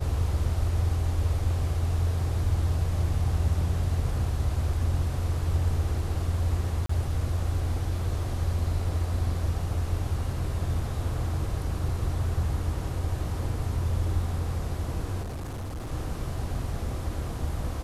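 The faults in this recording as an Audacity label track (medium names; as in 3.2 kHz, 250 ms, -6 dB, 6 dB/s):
6.860000	6.890000	dropout 34 ms
15.220000	15.920000	clipped -31.5 dBFS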